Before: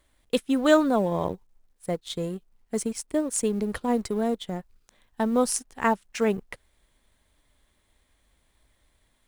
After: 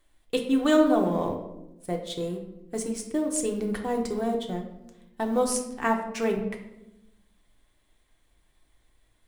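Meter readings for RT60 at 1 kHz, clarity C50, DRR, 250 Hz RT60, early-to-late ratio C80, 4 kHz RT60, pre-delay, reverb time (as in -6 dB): 0.80 s, 7.5 dB, 1.5 dB, 1.4 s, 10.0 dB, 0.55 s, 3 ms, 0.95 s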